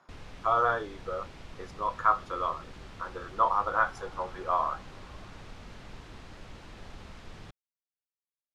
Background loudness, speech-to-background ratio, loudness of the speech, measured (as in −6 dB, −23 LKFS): −48.5 LKFS, 18.5 dB, −30.0 LKFS